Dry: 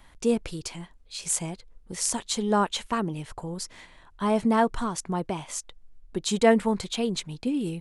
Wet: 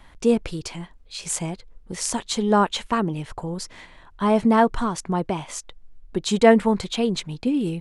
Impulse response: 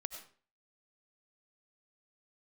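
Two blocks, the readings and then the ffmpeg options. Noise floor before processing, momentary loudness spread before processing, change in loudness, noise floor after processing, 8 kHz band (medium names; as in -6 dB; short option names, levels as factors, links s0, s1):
-54 dBFS, 15 LU, +4.5 dB, -49 dBFS, 0.0 dB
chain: -af "highshelf=f=6300:g=-8.5,volume=1.78"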